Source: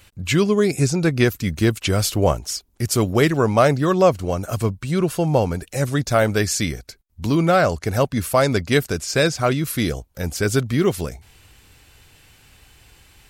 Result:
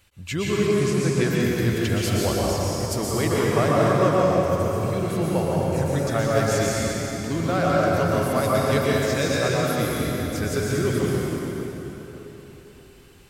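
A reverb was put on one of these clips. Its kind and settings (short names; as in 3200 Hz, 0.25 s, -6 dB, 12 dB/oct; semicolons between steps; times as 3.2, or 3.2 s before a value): plate-style reverb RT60 4 s, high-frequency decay 0.7×, pre-delay 0.105 s, DRR -6 dB; gain -9.5 dB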